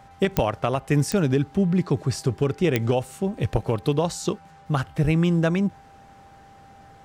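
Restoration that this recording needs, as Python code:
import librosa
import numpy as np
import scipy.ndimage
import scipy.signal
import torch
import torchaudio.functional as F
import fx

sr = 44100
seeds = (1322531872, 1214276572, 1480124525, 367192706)

y = fx.fix_declick_ar(x, sr, threshold=10.0)
y = fx.notch(y, sr, hz=790.0, q=30.0)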